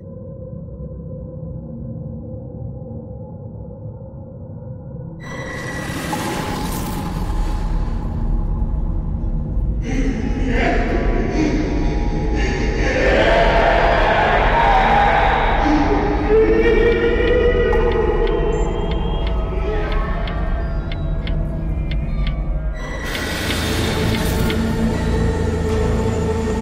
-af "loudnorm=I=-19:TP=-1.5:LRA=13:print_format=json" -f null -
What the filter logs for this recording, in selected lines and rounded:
"input_i" : "-19.0",
"input_tp" : "-6.2",
"input_lra" : "14.9",
"input_thresh" : "-29.8",